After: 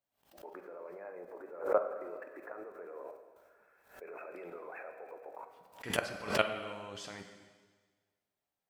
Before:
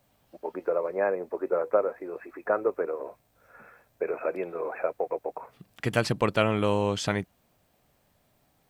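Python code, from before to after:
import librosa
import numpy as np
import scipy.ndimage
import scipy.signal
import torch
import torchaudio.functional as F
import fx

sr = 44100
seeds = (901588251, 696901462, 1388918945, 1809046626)

y = fx.low_shelf(x, sr, hz=260.0, db=-12.0)
y = fx.level_steps(y, sr, step_db=23)
y = fx.rev_plate(y, sr, seeds[0], rt60_s=1.5, hf_ratio=1.0, predelay_ms=0, drr_db=5.0)
y = fx.pre_swell(y, sr, db_per_s=130.0)
y = y * 10.0 ** (-1.0 / 20.0)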